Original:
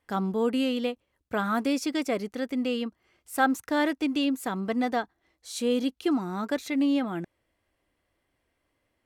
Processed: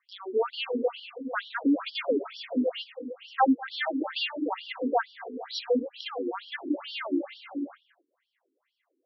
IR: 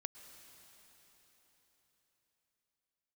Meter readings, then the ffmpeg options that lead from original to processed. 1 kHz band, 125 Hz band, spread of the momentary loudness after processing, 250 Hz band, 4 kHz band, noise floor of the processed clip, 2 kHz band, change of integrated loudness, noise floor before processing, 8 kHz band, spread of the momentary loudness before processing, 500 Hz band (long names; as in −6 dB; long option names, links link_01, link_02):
0.0 dB, below −20 dB, 11 LU, −3.5 dB, +1.5 dB, −80 dBFS, −2.0 dB, −2.5 dB, −77 dBFS, below −15 dB, 8 LU, 0.0 dB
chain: -filter_complex "[1:a]atrim=start_sample=2205,afade=type=out:start_time=0.43:duration=0.01,atrim=end_sample=19404,asetrate=22050,aresample=44100[link_01];[0:a][link_01]afir=irnorm=-1:irlink=0,afftfilt=real='re*between(b*sr/1024,310*pow(4100/310,0.5+0.5*sin(2*PI*2.2*pts/sr))/1.41,310*pow(4100/310,0.5+0.5*sin(2*PI*2.2*pts/sr))*1.41)':imag='im*between(b*sr/1024,310*pow(4100/310,0.5+0.5*sin(2*PI*2.2*pts/sr))/1.41,310*pow(4100/310,0.5+0.5*sin(2*PI*2.2*pts/sr))*1.41)':win_size=1024:overlap=0.75,volume=5.5dB"